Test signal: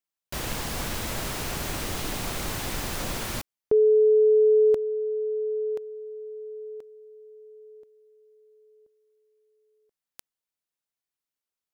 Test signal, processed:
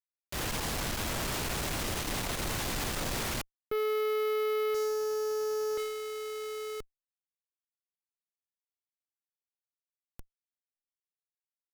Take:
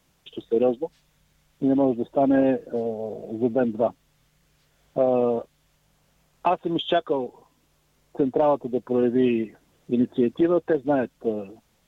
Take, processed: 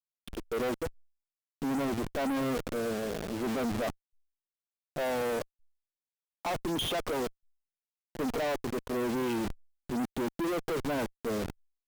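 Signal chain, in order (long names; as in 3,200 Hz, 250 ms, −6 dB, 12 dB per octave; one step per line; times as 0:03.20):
hold until the input has moved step −32.5 dBFS
transient designer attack −3 dB, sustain +6 dB
tube saturation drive 31 dB, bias 0.35
level +2 dB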